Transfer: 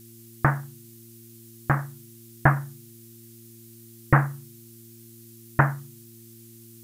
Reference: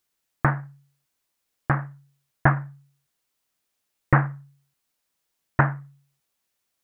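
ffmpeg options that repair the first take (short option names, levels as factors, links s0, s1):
-af "bandreject=f=114.8:t=h:w=4,bandreject=f=229.6:t=h:w=4,bandreject=f=344.4:t=h:w=4,afftdn=nr=30:nf=-48"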